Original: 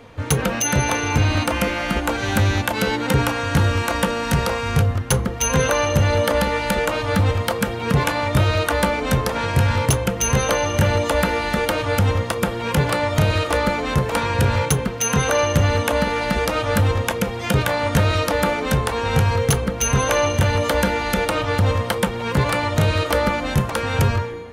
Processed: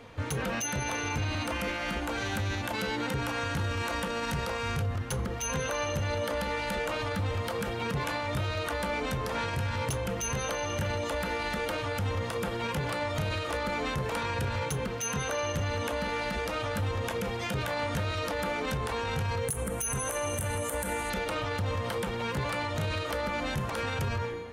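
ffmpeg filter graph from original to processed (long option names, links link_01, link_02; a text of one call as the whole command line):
ffmpeg -i in.wav -filter_complex "[0:a]asettb=1/sr,asplit=3[link_01][link_02][link_03];[link_01]atrim=end=19.484[link_04];[link_02]atrim=start=19.48:end=21.1,asetpts=PTS-STARTPTS,afade=type=in:duration=0.004:curve=qsin,afade=type=out:start_time=1.616:duration=0.004:curve=qsin,highshelf=frequency=6700:width_type=q:width=3:gain=13,acompressor=threshold=-17dB:ratio=6:attack=3.2:release=140:knee=1:detection=peak,volume=13dB,asoftclip=hard,volume=-13dB[link_05];[link_03]atrim=start=21.096[link_06];[link_04][link_05]acrossfade=duration=0.004:curve1=hsin:curve2=qsin[link_07];[link_07][link_06]acrossfade=duration=0.004:curve1=qsin:curve2=hsin,equalizer=frequency=3400:width=0.31:gain=2.5,alimiter=limit=-17.5dB:level=0:latency=1:release=52,volume=-6dB" out.wav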